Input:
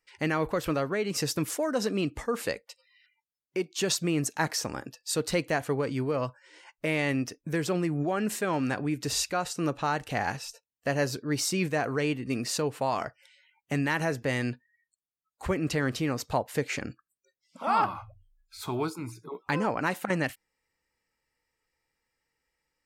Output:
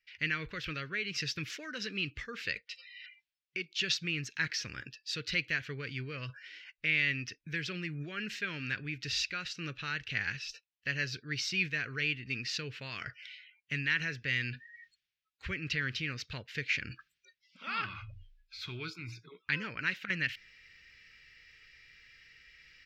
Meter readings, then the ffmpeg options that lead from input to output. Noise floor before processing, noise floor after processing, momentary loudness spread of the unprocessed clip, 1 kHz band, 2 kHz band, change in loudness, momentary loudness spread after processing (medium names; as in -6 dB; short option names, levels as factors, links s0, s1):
under -85 dBFS, under -85 dBFS, 8 LU, -15.5 dB, +1.0 dB, -5.0 dB, 15 LU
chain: -af "firequalizer=gain_entry='entry(120,0);entry(260,-10);entry(420,-9);entry(760,-24);entry(1500,4);entry(2500,11);entry(5600,1);entry(9100,-25);entry(14000,-15)':delay=0.05:min_phase=1,areverse,acompressor=mode=upward:threshold=0.0251:ratio=2.5,areverse,volume=0.501"